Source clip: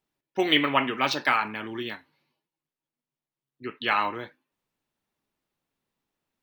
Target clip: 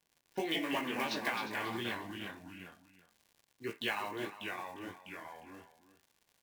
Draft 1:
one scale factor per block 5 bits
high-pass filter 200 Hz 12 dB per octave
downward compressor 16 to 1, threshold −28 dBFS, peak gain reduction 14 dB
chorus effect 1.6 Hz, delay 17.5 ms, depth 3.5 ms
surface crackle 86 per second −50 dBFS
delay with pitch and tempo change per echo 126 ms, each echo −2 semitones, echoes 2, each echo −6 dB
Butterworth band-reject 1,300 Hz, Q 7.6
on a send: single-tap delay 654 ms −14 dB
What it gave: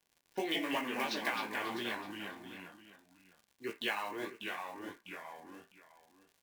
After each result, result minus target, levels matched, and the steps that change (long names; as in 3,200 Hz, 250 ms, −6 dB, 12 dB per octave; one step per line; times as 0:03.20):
echo 299 ms late; 125 Hz band −6.0 dB
change: single-tap delay 355 ms −14 dB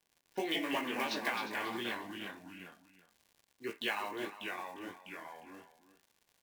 125 Hz band −6.0 dB
change: high-pass filter 70 Hz 12 dB per octave